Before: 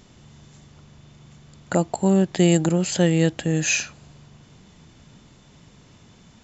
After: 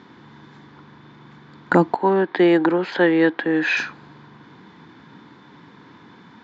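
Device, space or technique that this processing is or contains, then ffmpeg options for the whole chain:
kitchen radio: -filter_complex "[0:a]highpass=210,equalizer=frequency=300:width_type=q:width=4:gain=6,equalizer=frequency=620:width_type=q:width=4:gain=-10,equalizer=frequency=970:width_type=q:width=4:gain=8,equalizer=frequency=1600:width_type=q:width=4:gain=7,equalizer=frequency=2800:width_type=q:width=4:gain=-10,lowpass=frequency=3700:width=0.5412,lowpass=frequency=3700:width=1.3066,asettb=1/sr,asplit=3[link_01][link_02][link_03];[link_01]atrim=end=1.954[link_04];[link_02]atrim=start=1.95:end=3.77,asetpts=PTS-STARTPTS,afade=type=in:duration=0.004:curve=qsin,afade=type=out:start_time=1.816:duration=0.004:curve=qsin,acrossover=split=300 4500:gain=0.126 1 0.112[link_05][link_06][link_07];[link_05][link_06][link_07]amix=inputs=3:normalize=0[link_08];[link_03]atrim=start=3.766[link_09];[link_04][link_08]acrossfade=duration=0.004:curve1=hsin:curve2=qsin[link_10];[link_10][link_09]acrossfade=duration=0.004:curve1=qsin:curve2=hsin,volume=7dB"

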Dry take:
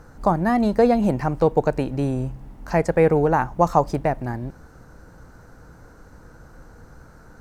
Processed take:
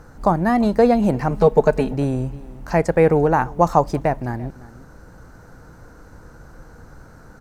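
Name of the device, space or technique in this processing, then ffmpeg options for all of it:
ducked delay: -filter_complex "[0:a]asplit=3[link_01][link_02][link_03];[link_02]adelay=343,volume=-8dB[link_04];[link_03]apad=whole_len=341788[link_05];[link_04][link_05]sidechaincompress=threshold=-31dB:ratio=8:attack=16:release=1220[link_06];[link_01][link_06]amix=inputs=2:normalize=0,asettb=1/sr,asplit=3[link_07][link_08][link_09];[link_07]atrim=end=1.304[link_10];[link_08]atrim=start=1.3:end=1.93,asetpts=PTS-STARTPTS,afade=type=in:duration=0.004:curve=qsin,afade=type=out:start_time=0.626:duration=0.004:curve=qsin,aecho=1:1:4.7:0.8,atrim=end_sample=27783[link_11];[link_09]atrim=start=1.926[link_12];[link_10][link_11]acrossfade=duration=0.004:curve1=hsin:curve2=qsin[link_13];[link_13][link_12]acrossfade=duration=0.004:curve1=qsin:curve2=hsin,volume=2dB"

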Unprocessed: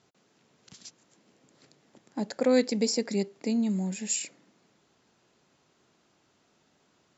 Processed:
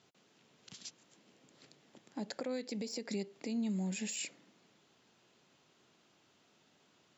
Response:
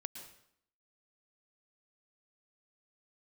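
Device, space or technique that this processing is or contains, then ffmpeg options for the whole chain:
broadcast voice chain: -af "highpass=86,deesser=0.7,acompressor=threshold=-31dB:ratio=3,equalizer=frequency=3100:width_type=o:width=0.92:gain=5,alimiter=level_in=2.5dB:limit=-24dB:level=0:latency=1:release=116,volume=-2.5dB,volume=-2.5dB"

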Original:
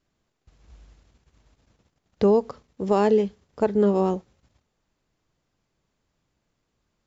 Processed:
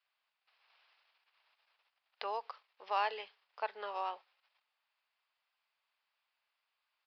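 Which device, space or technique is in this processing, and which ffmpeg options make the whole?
musical greeting card: -af "aresample=11025,aresample=44100,highpass=frequency=830:width=0.5412,highpass=frequency=830:width=1.3066,equalizer=frequency=2600:width_type=o:width=0.53:gain=5.5,volume=-4.5dB"

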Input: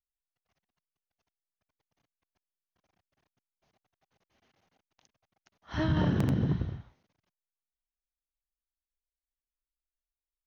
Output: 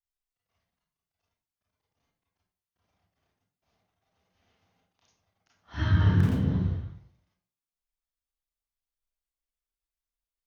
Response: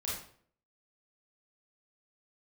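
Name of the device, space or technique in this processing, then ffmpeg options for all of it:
bathroom: -filter_complex "[0:a]asettb=1/sr,asplit=3[link_01][link_02][link_03];[link_01]atrim=end=5.754[link_04];[link_02]atrim=start=5.75:end=6.23,asetpts=PTS-STARTPTS,afade=type=in:duration=0.004:curve=qsin,afade=type=out:start_time=0.476:duration=0.004:curve=qsin,equalizer=frequency=100:width_type=o:width=0.67:gain=6,equalizer=frequency=630:width_type=o:width=0.67:gain=-9,equalizer=frequency=1600:width_type=o:width=0.67:gain=6[link_05];[link_03]atrim=start=6.226[link_06];[link_04][link_05]acrossfade=duration=0.004:curve1=hsin:curve2=qsin[link_07];[link_07][link_06]acrossfade=duration=0.004:curve1=qsin:curve2=hsin[link_08];[1:a]atrim=start_sample=2205[link_09];[link_08][link_09]afir=irnorm=-1:irlink=0,volume=-2.5dB"

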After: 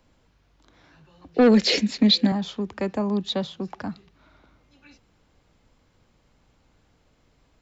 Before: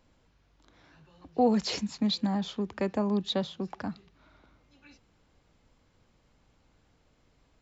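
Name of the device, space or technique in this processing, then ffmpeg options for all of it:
one-band saturation: -filter_complex "[0:a]asettb=1/sr,asplit=3[link_01][link_02][link_03];[link_01]atrim=end=1.344[link_04];[link_02]atrim=start=1.34:end=2.32,asetpts=PTS-STARTPTS,afade=type=in:duration=0.004:curve=qsin,afade=type=out:start_time=0.976:duration=0.004:curve=qsin,equalizer=frequency=125:width_type=o:width=1:gain=-10,equalizer=frequency=250:width_type=o:width=1:gain=10,equalizer=frequency=500:width_type=o:width=1:gain=11,equalizer=frequency=1000:width_type=o:width=1:gain=-8,equalizer=frequency=2000:width_type=o:width=1:gain=11,equalizer=frequency=4000:width_type=o:width=1:gain=7[link_05];[link_03]atrim=start=2.316[link_06];[link_04][link_05]acrossfade=duration=0.004:curve1=hsin:curve2=qsin[link_07];[link_07][link_06]acrossfade=duration=0.004:curve1=qsin:curve2=hsin,acrossover=split=230|2100[link_08][link_09][link_10];[link_09]asoftclip=type=tanh:threshold=-19dB[link_11];[link_08][link_11][link_10]amix=inputs=3:normalize=0,volume=3.5dB"

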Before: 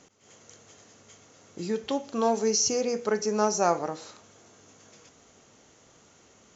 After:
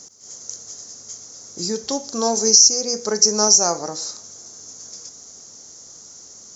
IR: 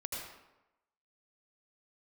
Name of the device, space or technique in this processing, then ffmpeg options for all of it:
over-bright horn tweeter: -af "highshelf=frequency=3900:width_type=q:width=3:gain=11.5,alimiter=limit=-4.5dB:level=0:latency=1:release=403,volume=3.5dB"

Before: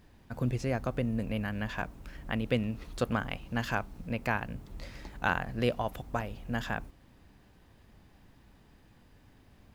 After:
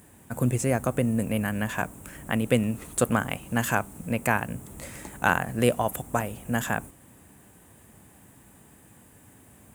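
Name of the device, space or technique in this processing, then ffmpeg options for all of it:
budget condenser microphone: -af "highpass=95,highshelf=frequency=6400:width_type=q:width=3:gain=11,volume=7dB"

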